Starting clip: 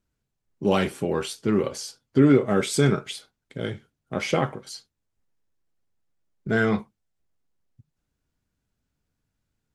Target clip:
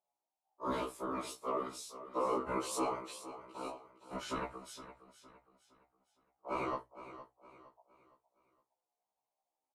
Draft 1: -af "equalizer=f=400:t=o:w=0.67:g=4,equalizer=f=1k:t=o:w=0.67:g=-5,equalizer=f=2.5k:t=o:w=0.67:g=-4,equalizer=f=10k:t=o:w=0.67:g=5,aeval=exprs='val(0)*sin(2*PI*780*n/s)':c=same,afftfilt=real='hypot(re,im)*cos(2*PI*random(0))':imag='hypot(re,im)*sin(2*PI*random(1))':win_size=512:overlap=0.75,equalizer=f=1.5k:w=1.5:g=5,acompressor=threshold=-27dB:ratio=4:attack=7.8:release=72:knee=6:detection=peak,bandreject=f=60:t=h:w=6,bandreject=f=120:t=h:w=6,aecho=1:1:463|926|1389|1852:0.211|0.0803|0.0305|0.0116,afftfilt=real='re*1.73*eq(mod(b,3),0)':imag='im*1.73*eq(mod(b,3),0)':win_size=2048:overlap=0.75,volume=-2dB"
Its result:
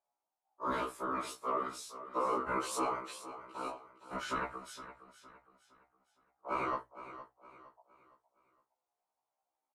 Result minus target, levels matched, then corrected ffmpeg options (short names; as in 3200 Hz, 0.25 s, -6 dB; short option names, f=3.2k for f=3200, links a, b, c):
2000 Hz band +3.5 dB
-af "equalizer=f=400:t=o:w=0.67:g=4,equalizer=f=1k:t=o:w=0.67:g=-5,equalizer=f=2.5k:t=o:w=0.67:g=-4,equalizer=f=10k:t=o:w=0.67:g=5,aeval=exprs='val(0)*sin(2*PI*780*n/s)':c=same,afftfilt=real='hypot(re,im)*cos(2*PI*random(0))':imag='hypot(re,im)*sin(2*PI*random(1))':win_size=512:overlap=0.75,equalizer=f=1.5k:w=1.5:g=-4,acompressor=threshold=-27dB:ratio=4:attack=7.8:release=72:knee=6:detection=peak,bandreject=f=60:t=h:w=6,bandreject=f=120:t=h:w=6,aecho=1:1:463|926|1389|1852:0.211|0.0803|0.0305|0.0116,afftfilt=real='re*1.73*eq(mod(b,3),0)':imag='im*1.73*eq(mod(b,3),0)':win_size=2048:overlap=0.75,volume=-2dB"